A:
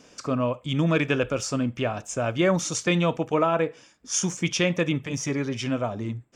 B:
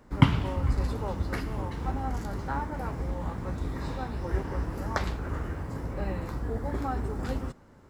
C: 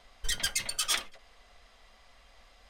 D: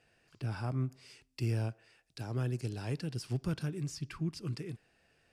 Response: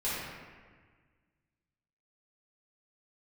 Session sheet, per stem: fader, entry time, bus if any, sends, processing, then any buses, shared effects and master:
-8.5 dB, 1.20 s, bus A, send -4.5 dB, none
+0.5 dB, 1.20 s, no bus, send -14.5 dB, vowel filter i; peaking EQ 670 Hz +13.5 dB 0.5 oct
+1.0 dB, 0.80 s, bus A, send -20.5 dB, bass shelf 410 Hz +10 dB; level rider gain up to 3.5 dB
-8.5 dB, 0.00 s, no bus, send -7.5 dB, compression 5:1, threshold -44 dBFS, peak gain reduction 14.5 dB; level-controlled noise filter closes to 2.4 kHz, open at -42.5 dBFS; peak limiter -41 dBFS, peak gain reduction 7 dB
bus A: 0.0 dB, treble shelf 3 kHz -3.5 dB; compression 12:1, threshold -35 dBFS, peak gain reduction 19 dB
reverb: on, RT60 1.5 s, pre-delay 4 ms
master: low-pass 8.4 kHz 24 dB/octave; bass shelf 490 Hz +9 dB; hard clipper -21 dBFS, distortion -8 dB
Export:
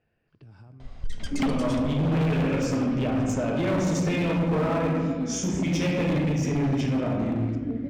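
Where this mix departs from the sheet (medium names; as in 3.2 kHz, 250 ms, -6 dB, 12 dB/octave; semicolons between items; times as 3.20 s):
stem A -8.5 dB -> +1.5 dB; stem B +0.5 dB -> +7.5 dB; reverb return -9.5 dB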